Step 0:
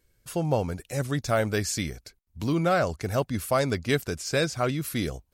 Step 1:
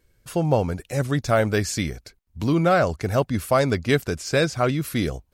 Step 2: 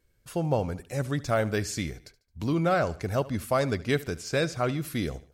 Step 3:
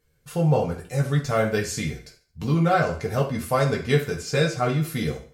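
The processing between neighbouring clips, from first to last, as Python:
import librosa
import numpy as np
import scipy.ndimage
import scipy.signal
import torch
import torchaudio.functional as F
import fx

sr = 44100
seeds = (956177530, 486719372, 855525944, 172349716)

y1 = fx.high_shelf(x, sr, hz=4200.0, db=-5.5)
y1 = y1 * 10.0 ** (5.0 / 20.0)
y2 = fx.echo_feedback(y1, sr, ms=73, feedback_pct=43, wet_db=-19)
y2 = y2 * 10.0 ** (-6.0 / 20.0)
y3 = fx.rev_fdn(y2, sr, rt60_s=0.42, lf_ratio=0.8, hf_ratio=0.9, size_ms=39.0, drr_db=-2.0)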